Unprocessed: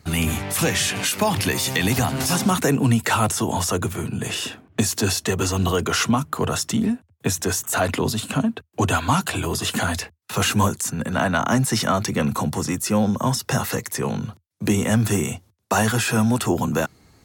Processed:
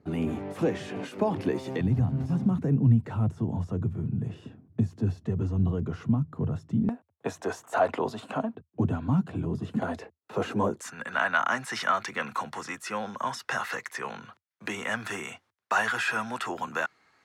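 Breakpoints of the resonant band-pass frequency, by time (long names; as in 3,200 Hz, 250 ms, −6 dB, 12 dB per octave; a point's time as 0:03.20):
resonant band-pass, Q 1.3
360 Hz
from 0:01.81 130 Hz
from 0:06.89 710 Hz
from 0:08.55 180 Hz
from 0:09.82 440 Hz
from 0:10.81 1,600 Hz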